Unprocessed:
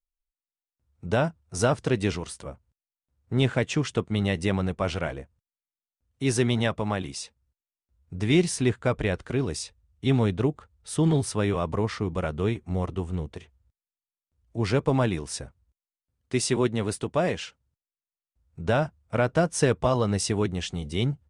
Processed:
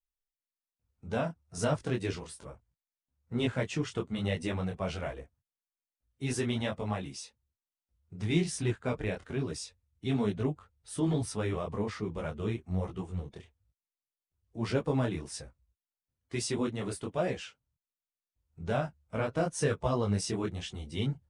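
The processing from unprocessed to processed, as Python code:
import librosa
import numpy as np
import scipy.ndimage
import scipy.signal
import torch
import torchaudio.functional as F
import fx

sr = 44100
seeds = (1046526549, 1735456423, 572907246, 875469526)

y = fx.spec_quant(x, sr, step_db=15)
y = fx.detune_double(y, sr, cents=40)
y = F.gain(torch.from_numpy(y), -3.0).numpy()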